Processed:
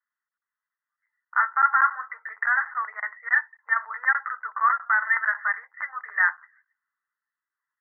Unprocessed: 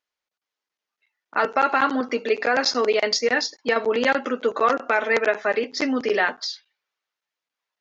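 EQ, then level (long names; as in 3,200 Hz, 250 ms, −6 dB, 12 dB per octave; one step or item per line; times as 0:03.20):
Butterworth high-pass 1,100 Hz 36 dB per octave
Chebyshev low-pass filter 2,000 Hz, order 10
+3.5 dB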